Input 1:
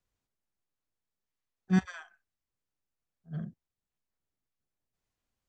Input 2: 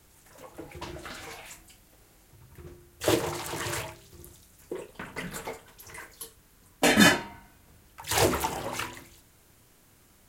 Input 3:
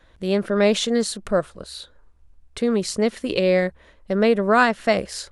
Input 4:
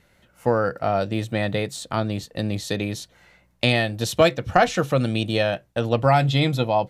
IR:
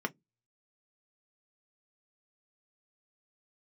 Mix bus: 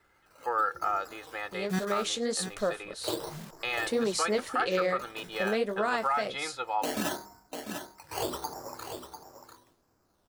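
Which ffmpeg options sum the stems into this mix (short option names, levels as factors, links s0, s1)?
-filter_complex "[0:a]acrusher=bits=7:mix=0:aa=0.000001,volume=0.944,asplit=3[s0][s1][s2];[s1]volume=0.355[s3];[1:a]lowpass=f=1400:w=0.5412,lowpass=f=1400:w=1.3066,acrusher=samples=10:mix=1:aa=0.000001:lfo=1:lforange=6:lforate=0.78,volume=0.501,asplit=2[s4][s5];[s5]volume=0.335[s6];[2:a]dynaudnorm=f=150:g=13:m=3.76,flanger=delay=7.7:depth=7.8:regen=-46:speed=1.8:shape=triangular,adelay=1300,volume=0.398[s7];[3:a]bandpass=f=1300:t=q:w=3:csg=0,aecho=1:1:2.4:0.7,volume=1.06[s8];[s2]apad=whole_len=453599[s9];[s4][s9]sidechaincompress=threshold=0.00562:ratio=8:attack=11:release=691[s10];[s3][s6]amix=inputs=2:normalize=0,aecho=0:1:696:1[s11];[s0][s10][s7][s8][s11]amix=inputs=5:normalize=0,bass=f=250:g=-8,treble=f=4000:g=5,alimiter=limit=0.119:level=0:latency=1:release=74"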